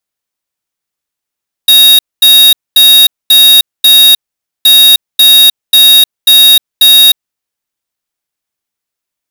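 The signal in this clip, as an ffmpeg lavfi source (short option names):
-f lavfi -i "aevalsrc='0.708*(2*lt(mod(3760*t,1),0.5)-1)*clip(min(mod(mod(t,2.97),0.54),0.31-mod(mod(t,2.97),0.54))/0.005,0,1)*lt(mod(t,2.97),2.7)':d=5.94:s=44100"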